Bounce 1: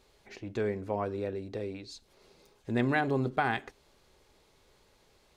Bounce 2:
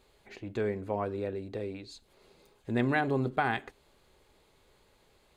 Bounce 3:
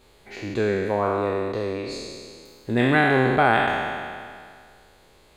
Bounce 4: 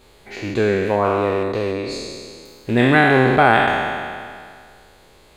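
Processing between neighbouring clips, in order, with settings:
parametric band 5,600 Hz −9 dB 0.32 octaves
peak hold with a decay on every bin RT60 2.09 s; level +6.5 dB
loose part that buzzes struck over −30 dBFS, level −30 dBFS; level +5 dB

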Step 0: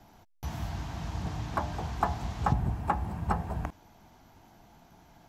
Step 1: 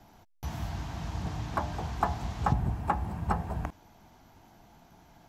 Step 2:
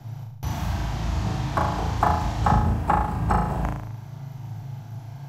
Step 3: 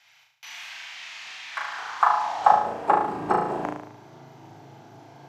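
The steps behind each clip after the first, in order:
no processing that can be heard
noise in a band 100–150 Hz −45 dBFS; on a send: flutter between parallel walls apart 6.3 metres, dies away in 0.69 s; on the sum: level +5.5 dB
high-frequency loss of the air 52 metres; high-pass filter sweep 2,300 Hz → 350 Hz, 0:01.46–0:03.09

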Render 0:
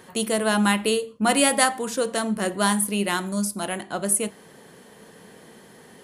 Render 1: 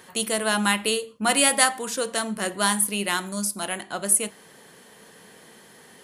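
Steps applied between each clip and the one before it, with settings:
tilt shelving filter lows −4 dB, about 860 Hz
level −1.5 dB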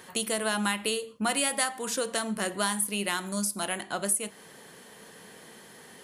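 downward compressor 2.5 to 1, threshold −27 dBFS, peak gain reduction 10 dB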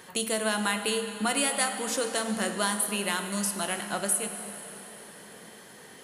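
dense smooth reverb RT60 4.1 s, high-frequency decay 0.85×, DRR 6.5 dB

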